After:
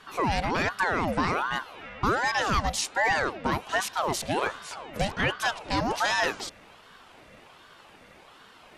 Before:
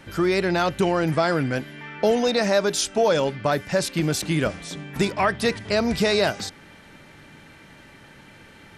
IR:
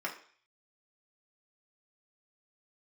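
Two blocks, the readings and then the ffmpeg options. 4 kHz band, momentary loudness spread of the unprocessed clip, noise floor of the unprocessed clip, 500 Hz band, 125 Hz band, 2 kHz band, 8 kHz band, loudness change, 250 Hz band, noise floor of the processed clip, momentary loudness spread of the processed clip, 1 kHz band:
-4.5 dB, 7 LU, -49 dBFS, -10.5 dB, -7.0 dB, +0.5 dB, -4.5 dB, -4.5 dB, -9.0 dB, -53 dBFS, 7 LU, +0.5 dB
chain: -af "acontrast=76,aeval=exprs='val(0)*sin(2*PI*850*n/s+850*0.6/1.3*sin(2*PI*1.3*n/s))':c=same,volume=-8.5dB"

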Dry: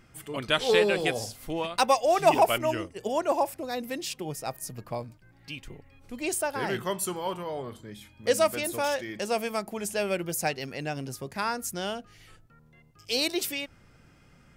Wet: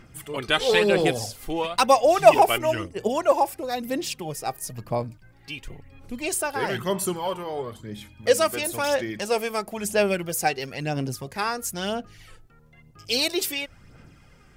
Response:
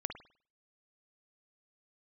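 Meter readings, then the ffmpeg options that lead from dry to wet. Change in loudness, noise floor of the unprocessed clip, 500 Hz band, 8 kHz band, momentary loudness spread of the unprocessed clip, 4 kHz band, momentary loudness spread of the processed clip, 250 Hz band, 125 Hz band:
+4.5 dB, -58 dBFS, +4.5 dB, +4.0 dB, 15 LU, +4.0 dB, 14 LU, +4.0 dB, +5.0 dB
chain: -af "aphaser=in_gain=1:out_gain=1:delay=2.6:decay=0.46:speed=1:type=sinusoidal,volume=3dB"

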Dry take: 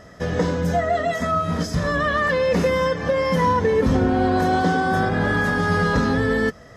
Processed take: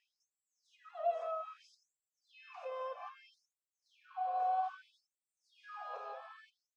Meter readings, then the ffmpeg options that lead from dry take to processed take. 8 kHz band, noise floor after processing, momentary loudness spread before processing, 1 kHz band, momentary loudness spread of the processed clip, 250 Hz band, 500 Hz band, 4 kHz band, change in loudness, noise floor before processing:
under -35 dB, under -85 dBFS, 4 LU, -16.5 dB, 20 LU, under -40 dB, -23.5 dB, -29.5 dB, -19.5 dB, -44 dBFS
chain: -filter_complex "[0:a]acompressor=threshold=-22dB:ratio=4,aresample=22050,aresample=44100,asplit=3[a][b][c];[a]bandpass=f=730:t=q:w=8,volume=0dB[d];[b]bandpass=f=1.09k:t=q:w=8,volume=-6dB[e];[c]bandpass=f=2.44k:t=q:w=8,volume=-9dB[f];[d][e][f]amix=inputs=3:normalize=0,asplit=2[g][h];[h]aecho=0:1:172:0.188[i];[g][i]amix=inputs=2:normalize=0,afftfilt=real='re*gte(b*sr/1024,390*pow(7300/390,0.5+0.5*sin(2*PI*0.62*pts/sr)))':imag='im*gte(b*sr/1024,390*pow(7300/390,0.5+0.5*sin(2*PI*0.62*pts/sr)))':win_size=1024:overlap=0.75,volume=-4dB"

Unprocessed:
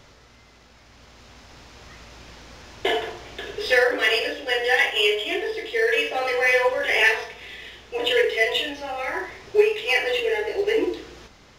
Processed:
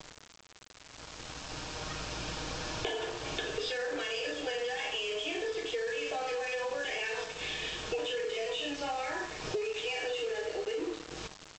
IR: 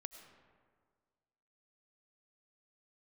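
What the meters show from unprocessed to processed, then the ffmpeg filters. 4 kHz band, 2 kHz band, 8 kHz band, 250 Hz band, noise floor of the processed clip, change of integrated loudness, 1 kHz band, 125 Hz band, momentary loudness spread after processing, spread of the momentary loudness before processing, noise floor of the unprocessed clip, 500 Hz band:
-10.0 dB, -15.5 dB, -2.0 dB, -7.5 dB, -55 dBFS, -13.5 dB, -9.5 dB, n/a, 10 LU, 14 LU, -52 dBFS, -12.0 dB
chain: -af "bandreject=f=2k:w=5.1,aecho=1:1:6.4:0.52,dynaudnorm=f=380:g=11:m=11.5dB,alimiter=limit=-15dB:level=0:latency=1,acompressor=threshold=-38dB:ratio=8,aresample=16000,aeval=exprs='val(0)*gte(abs(val(0)),0.00562)':c=same,aresample=44100,volume=5dB"

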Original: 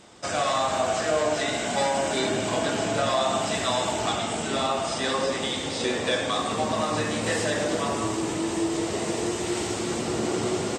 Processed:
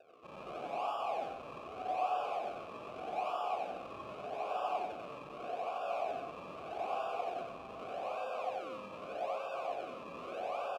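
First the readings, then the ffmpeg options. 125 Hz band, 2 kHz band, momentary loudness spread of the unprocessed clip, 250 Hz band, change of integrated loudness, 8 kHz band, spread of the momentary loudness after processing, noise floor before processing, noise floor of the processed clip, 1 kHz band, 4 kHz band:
-25.5 dB, -18.5 dB, 4 LU, -24.5 dB, -14.0 dB, under -30 dB, 10 LU, -30 dBFS, -49 dBFS, -8.5 dB, -24.0 dB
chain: -filter_complex "[0:a]aeval=exprs='val(0)+0.01*(sin(2*PI*60*n/s)+sin(2*PI*2*60*n/s)/2+sin(2*PI*3*60*n/s)/3+sin(2*PI*4*60*n/s)/4+sin(2*PI*5*60*n/s)/5)':c=same,highpass=f=210:t=q:w=0.5412,highpass=f=210:t=q:w=1.307,lowpass=f=3k:t=q:w=0.5176,lowpass=f=3k:t=q:w=0.7071,lowpass=f=3k:t=q:w=1.932,afreqshift=190,aresample=11025,asoftclip=type=hard:threshold=-29.5dB,aresample=44100,acrusher=samples=41:mix=1:aa=0.000001:lfo=1:lforange=41:lforate=0.82,asplit=3[a][b][c];[a]bandpass=f=730:t=q:w=8,volume=0dB[d];[b]bandpass=f=1.09k:t=q:w=8,volume=-6dB[e];[c]bandpass=f=2.44k:t=q:w=8,volume=-9dB[f];[d][e][f]amix=inputs=3:normalize=0,asplit=2[g][h];[h]aecho=0:1:90.38|128.3:0.794|0.282[i];[g][i]amix=inputs=2:normalize=0,volume=1.5dB"

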